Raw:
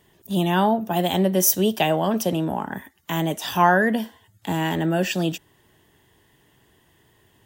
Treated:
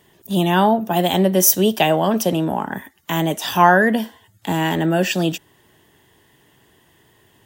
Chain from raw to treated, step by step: low shelf 76 Hz -8 dB; gain +4.5 dB

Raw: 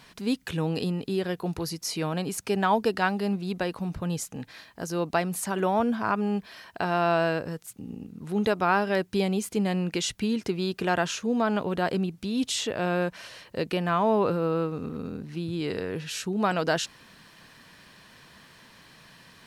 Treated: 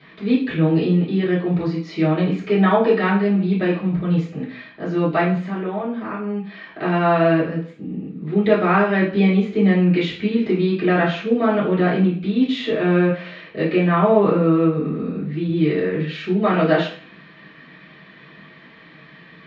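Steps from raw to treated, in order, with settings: 5.34–6.82 compressor 2.5:1, threshold -34 dBFS, peak gain reduction 10 dB; LPF 3400 Hz 24 dB/oct; bell 840 Hz -5.5 dB 0.45 oct; reverb RT60 0.45 s, pre-delay 3 ms, DRR -10 dB; gain -8 dB

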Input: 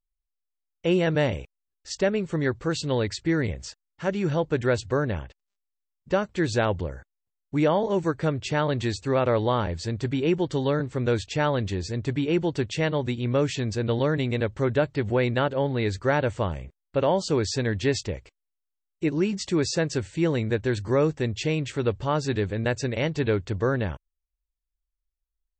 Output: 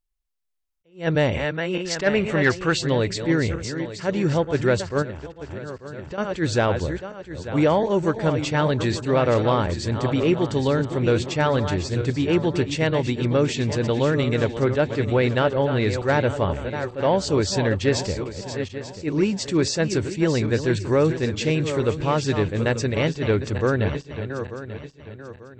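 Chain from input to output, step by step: regenerating reverse delay 0.445 s, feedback 58%, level -9.5 dB; 1.34–2.79 bell 1700 Hz +8.5 dB 2.2 oct; in parallel at -7.5 dB: sine folder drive 5 dB, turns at -7 dBFS; 5.02–6.18 on the sum: compressor 12:1, threshold -26 dBFS, peak gain reduction 14.5 dB; attack slew limiter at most 230 dB/s; gain -3 dB

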